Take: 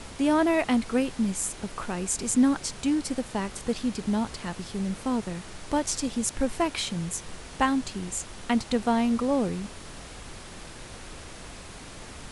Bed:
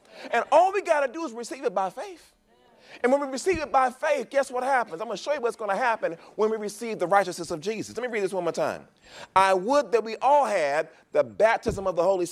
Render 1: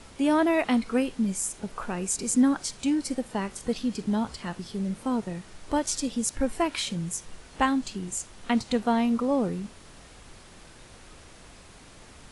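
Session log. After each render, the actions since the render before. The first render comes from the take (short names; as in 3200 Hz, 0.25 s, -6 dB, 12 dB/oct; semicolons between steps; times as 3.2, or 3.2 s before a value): noise print and reduce 7 dB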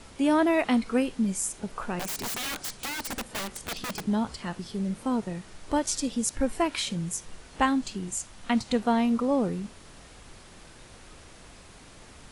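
1.99–4.06 wrapped overs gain 27.5 dB; 8.11–8.66 bell 410 Hz -7.5 dB 0.43 oct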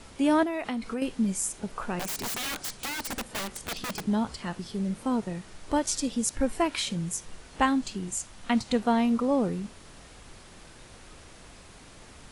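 0.43–1.02 compressor 5:1, threshold -28 dBFS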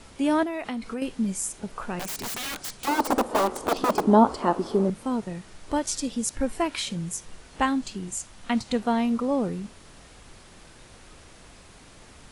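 2.87–4.9 band shelf 560 Hz +16 dB 2.7 oct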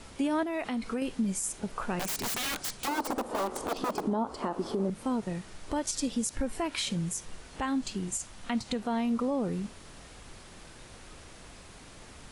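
compressor 6:1, threshold -25 dBFS, peak gain reduction 13 dB; limiter -21 dBFS, peak gain reduction 7 dB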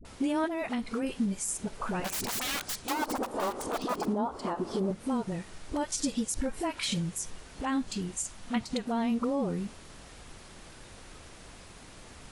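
vibrato 9.3 Hz 37 cents; dispersion highs, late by 50 ms, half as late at 530 Hz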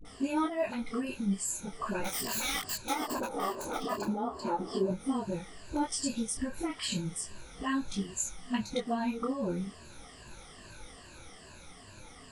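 moving spectral ripple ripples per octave 1.4, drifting -2.4 Hz, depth 15 dB; detuned doubles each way 13 cents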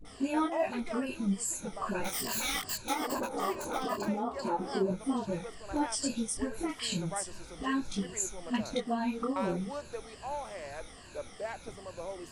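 add bed -18.5 dB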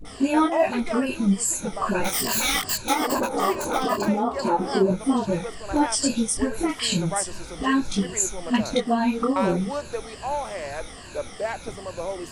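gain +10 dB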